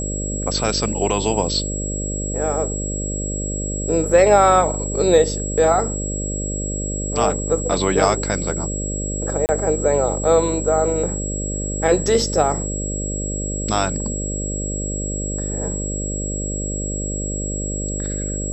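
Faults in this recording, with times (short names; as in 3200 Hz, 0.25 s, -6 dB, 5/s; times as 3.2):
buzz 50 Hz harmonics 12 -26 dBFS
tone 7700 Hz -27 dBFS
9.46–9.49 gap 29 ms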